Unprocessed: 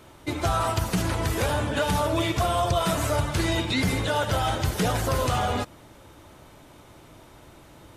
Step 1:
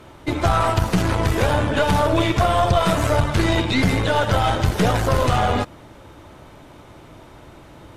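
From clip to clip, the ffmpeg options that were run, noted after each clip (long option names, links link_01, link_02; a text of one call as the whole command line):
ffmpeg -i in.wav -af "aeval=exprs='0.224*(cos(1*acos(clip(val(0)/0.224,-1,1)))-cos(1*PI/2))+0.0251*(cos(4*acos(clip(val(0)/0.224,-1,1)))-cos(4*PI/2))':channel_layout=same,aemphasis=mode=reproduction:type=cd,volume=6dB" out.wav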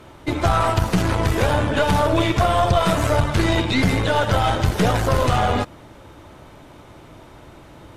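ffmpeg -i in.wav -af anull out.wav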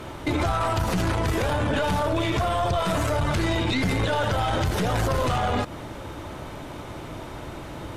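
ffmpeg -i in.wav -af "acompressor=threshold=-21dB:ratio=6,alimiter=limit=-22.5dB:level=0:latency=1:release=15,volume=7dB" out.wav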